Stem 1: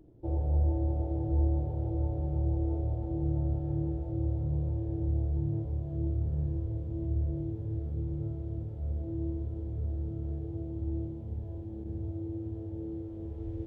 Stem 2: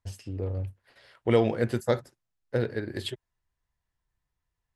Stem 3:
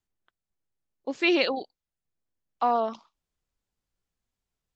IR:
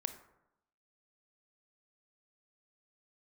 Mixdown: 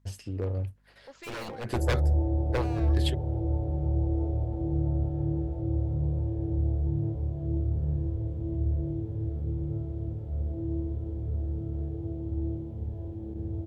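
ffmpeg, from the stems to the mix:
-filter_complex "[0:a]adelay=1500,volume=2.5dB[link_01];[1:a]aeval=exprs='0.0708*(abs(mod(val(0)/0.0708+3,4)-2)-1)':channel_layout=same,aeval=exprs='val(0)+0.000562*(sin(2*PI*50*n/s)+sin(2*PI*2*50*n/s)/2+sin(2*PI*3*50*n/s)/3+sin(2*PI*4*50*n/s)/4+sin(2*PI*5*50*n/s)/5)':channel_layout=same,volume=1dB[link_02];[2:a]equalizer=frequency=270:width=1.5:gain=-11.5,volume=31dB,asoftclip=hard,volume=-31dB,volume=-10.5dB,asplit=2[link_03][link_04];[link_04]apad=whole_len=209831[link_05];[link_02][link_05]sidechaincompress=threshold=-54dB:ratio=8:attack=8.6:release=136[link_06];[link_01][link_06][link_03]amix=inputs=3:normalize=0"

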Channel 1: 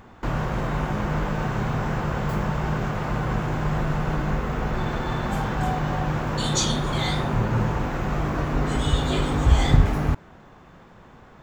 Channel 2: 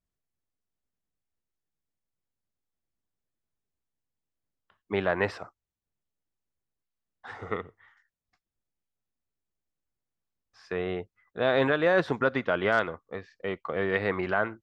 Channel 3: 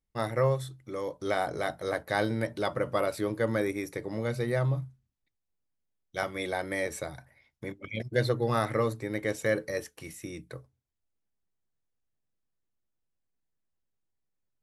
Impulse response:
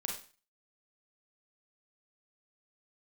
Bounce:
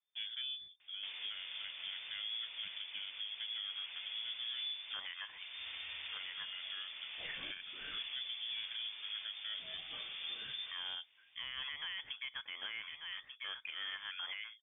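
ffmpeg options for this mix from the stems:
-filter_complex "[0:a]adelay=800,volume=-16.5dB[link_01];[1:a]equalizer=frequency=580:width_type=o:width=1.1:gain=-6,volume=-0.5dB,asplit=2[link_02][link_03];[link_03]volume=-14.5dB[link_04];[2:a]aeval=exprs='sgn(val(0))*max(abs(val(0))-0.00376,0)':channel_layout=same,lowshelf=frequency=390:width_type=q:width=1.5:gain=12.5,volume=-13dB[link_05];[link_04]aecho=0:1:1190:1[link_06];[link_01][link_02][link_05][link_06]amix=inputs=4:normalize=0,equalizer=frequency=76:width_type=o:width=2.2:gain=-12,lowpass=frequency=3100:width_type=q:width=0.5098,lowpass=frequency=3100:width_type=q:width=0.6013,lowpass=frequency=3100:width_type=q:width=0.9,lowpass=frequency=3100:width_type=q:width=2.563,afreqshift=-3600,alimiter=level_in=9dB:limit=-24dB:level=0:latency=1:release=457,volume=-9dB"

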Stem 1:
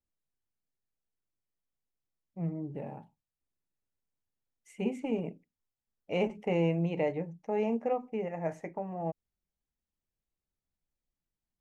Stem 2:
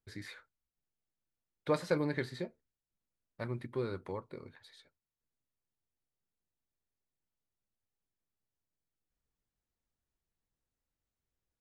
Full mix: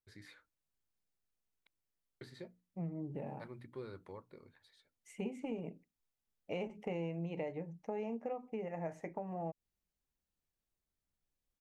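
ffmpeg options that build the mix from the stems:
ffmpeg -i stem1.wav -i stem2.wav -filter_complex "[0:a]adelay=400,volume=-1dB[link_01];[1:a]bandreject=frequency=60:width_type=h:width=6,bandreject=frequency=120:width_type=h:width=6,bandreject=frequency=180:width_type=h:width=6,bandreject=frequency=240:width_type=h:width=6,bandreject=frequency=300:width_type=h:width=6,volume=-9.5dB,asplit=3[link_02][link_03][link_04];[link_02]atrim=end=1.67,asetpts=PTS-STARTPTS,afade=type=out:start_time=1.666:duration=0.004:curve=hsin[link_05];[link_03]atrim=start=1.67:end=2.21,asetpts=PTS-STARTPTS,volume=0[link_06];[link_04]atrim=start=2.21,asetpts=PTS-STARTPTS,afade=type=in:duration=0.004:curve=hsin[link_07];[link_05][link_06][link_07]concat=n=3:v=0:a=1[link_08];[link_01][link_08]amix=inputs=2:normalize=0,acompressor=threshold=-38dB:ratio=4" out.wav

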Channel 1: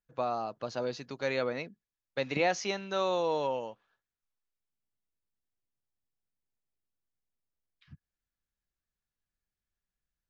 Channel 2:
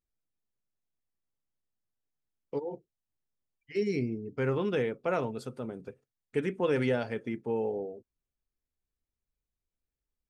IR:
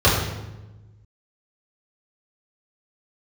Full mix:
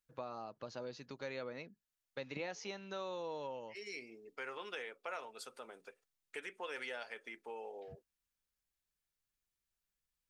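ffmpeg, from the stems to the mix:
-filter_complex "[0:a]bandreject=frequency=710:width=12,volume=-4.5dB,asplit=2[link_01][link_02];[1:a]highpass=710,tiltshelf=frequency=1200:gain=-4,volume=-0.5dB[link_03];[link_02]apad=whole_len=453880[link_04];[link_03][link_04]sidechaincompress=threshold=-48dB:ratio=8:attack=16:release=337[link_05];[link_01][link_05]amix=inputs=2:normalize=0,acompressor=threshold=-46dB:ratio=2"

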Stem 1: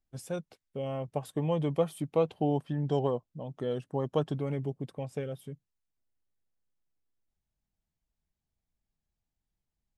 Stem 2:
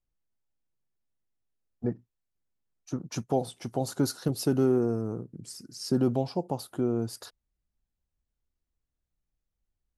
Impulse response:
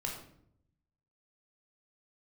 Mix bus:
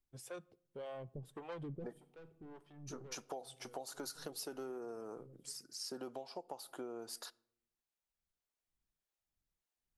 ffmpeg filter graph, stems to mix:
-filter_complex "[0:a]equalizer=frequency=360:width_type=o:width=0.37:gain=6,asoftclip=type=tanh:threshold=-29.5dB,acrossover=split=430[link_01][link_02];[link_01]aeval=exprs='val(0)*(1-1/2+1/2*cos(2*PI*1.7*n/s))':channel_layout=same[link_03];[link_02]aeval=exprs='val(0)*(1-1/2-1/2*cos(2*PI*1.7*n/s))':channel_layout=same[link_04];[link_03][link_04]amix=inputs=2:normalize=0,volume=-4.5dB,asplit=2[link_05][link_06];[link_06]volume=-23dB[link_07];[1:a]highpass=580,volume=-3dB,asplit=3[link_08][link_09][link_10];[link_09]volume=-22.5dB[link_11];[link_10]apad=whole_len=439880[link_12];[link_05][link_12]sidechaincompress=threshold=-54dB:ratio=16:attack=16:release=1490[link_13];[2:a]atrim=start_sample=2205[link_14];[link_07][link_11]amix=inputs=2:normalize=0[link_15];[link_15][link_14]afir=irnorm=-1:irlink=0[link_16];[link_13][link_08][link_16]amix=inputs=3:normalize=0,acompressor=threshold=-41dB:ratio=12"

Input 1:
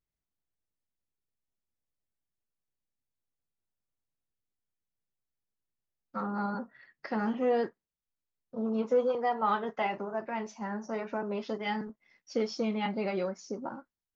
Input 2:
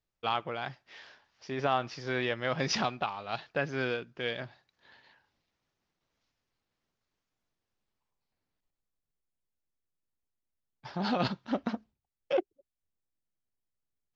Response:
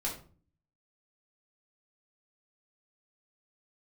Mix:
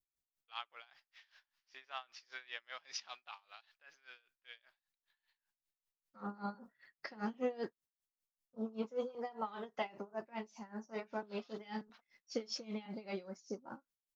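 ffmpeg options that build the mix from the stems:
-filter_complex "[0:a]highshelf=frequency=2900:gain=10,volume=-5dB[link_01];[1:a]highpass=1400,adelay=250,volume=-6dB,afade=type=out:start_time=3.35:duration=0.79:silence=0.375837[link_02];[link_01][link_02]amix=inputs=2:normalize=0,adynamicequalizer=threshold=0.00282:dfrequency=1600:dqfactor=1.1:tfrequency=1600:tqfactor=1.1:attack=5:release=100:ratio=0.375:range=2:mode=cutabove:tftype=bell,aeval=exprs='val(0)*pow(10,-21*(0.5-0.5*cos(2*PI*5.1*n/s))/20)':channel_layout=same"

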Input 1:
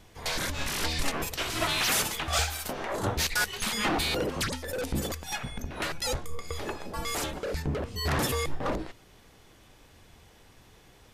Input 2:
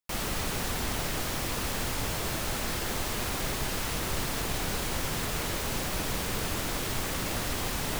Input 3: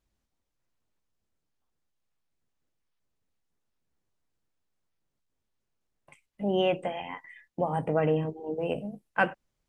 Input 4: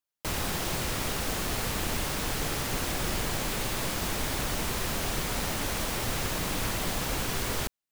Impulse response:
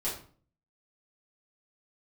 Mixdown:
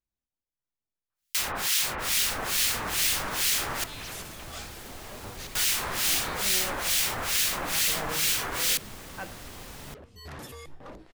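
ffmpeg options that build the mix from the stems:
-filter_complex "[0:a]adelay=2200,volume=-14.5dB[link_01];[1:a]adelay=1950,volume=-11.5dB[link_02];[2:a]volume=-14.5dB,asplit=2[link_03][link_04];[3:a]tiltshelf=frequency=640:gain=-10,acrossover=split=1700[link_05][link_06];[link_05]aeval=exprs='val(0)*(1-1/2+1/2*cos(2*PI*2.3*n/s))':channel_layout=same[link_07];[link_06]aeval=exprs='val(0)*(1-1/2-1/2*cos(2*PI*2.3*n/s))':channel_layout=same[link_08];[link_07][link_08]amix=inputs=2:normalize=0,adelay=1100,volume=2dB,asplit=3[link_09][link_10][link_11];[link_09]atrim=end=3.84,asetpts=PTS-STARTPTS,afade=type=out:start_time=3.836:duration=0.004:curve=hsin[link_12];[link_10]atrim=start=3.84:end=5.55,asetpts=PTS-STARTPTS,volume=0[link_13];[link_11]atrim=start=5.55,asetpts=PTS-STARTPTS,afade=type=in:duration=0.004:curve=hsin[link_14];[link_12][link_13][link_14]concat=n=3:v=0:a=1[link_15];[link_04]apad=whole_len=587954[link_16];[link_01][link_16]sidechaincompress=threshold=-58dB:ratio=8:attack=21:release=492[link_17];[link_17][link_02][link_03][link_15]amix=inputs=4:normalize=0"

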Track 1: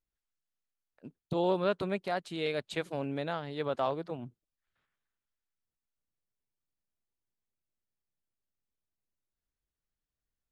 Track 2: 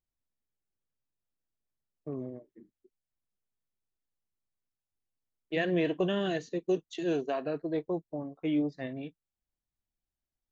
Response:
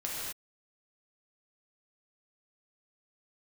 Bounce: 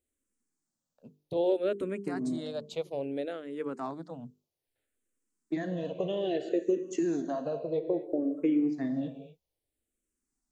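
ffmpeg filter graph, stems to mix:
-filter_complex "[0:a]bandreject=frequency=50:width_type=h:width=6,bandreject=frequency=100:width_type=h:width=6,bandreject=frequency=150:width_type=h:width=6,bandreject=frequency=200:width_type=h:width=6,bandreject=frequency=250:width_type=h:width=6,bandreject=frequency=300:width_type=h:width=6,bandreject=frequency=350:width_type=h:width=6,bandreject=frequency=400:width_type=h:width=6,bandreject=frequency=450:width_type=h:width=6,volume=-5.5dB,asplit=2[link_01][link_02];[1:a]acompressor=threshold=-36dB:ratio=6,volume=0.5dB,asplit=2[link_03][link_04];[link_04]volume=-9dB[link_05];[link_02]apad=whole_len=463604[link_06];[link_03][link_06]sidechaincompress=threshold=-42dB:ratio=8:attack=16:release=153[link_07];[2:a]atrim=start_sample=2205[link_08];[link_05][link_08]afir=irnorm=-1:irlink=0[link_09];[link_01][link_07][link_09]amix=inputs=3:normalize=0,equalizer=frequency=250:width_type=o:width=1:gain=10,equalizer=frequency=500:width_type=o:width=1:gain=8,equalizer=frequency=8000:width_type=o:width=1:gain=11,asplit=2[link_10][link_11];[link_11]afreqshift=-0.61[link_12];[link_10][link_12]amix=inputs=2:normalize=1"

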